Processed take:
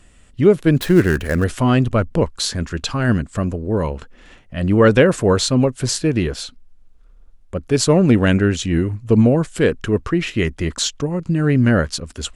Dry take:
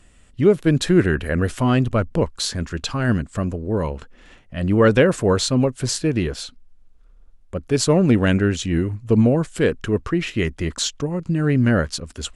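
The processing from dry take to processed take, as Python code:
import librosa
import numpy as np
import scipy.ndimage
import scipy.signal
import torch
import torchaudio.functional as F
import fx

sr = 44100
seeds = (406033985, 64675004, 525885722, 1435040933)

y = fx.dead_time(x, sr, dead_ms=0.071, at=(0.76, 1.44))
y = y * 10.0 ** (2.5 / 20.0)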